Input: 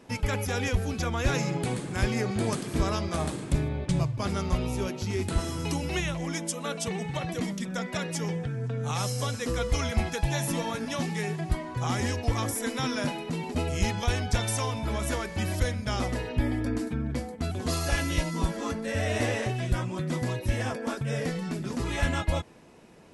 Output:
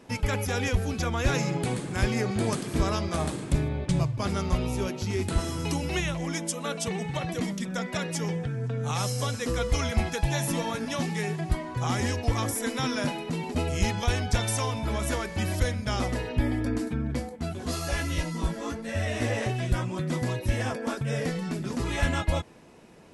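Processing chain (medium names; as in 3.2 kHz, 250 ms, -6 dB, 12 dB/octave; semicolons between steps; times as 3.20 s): 17.29–19.41 s: chorus voices 2, 1.2 Hz, delay 15 ms, depth 3 ms; trim +1 dB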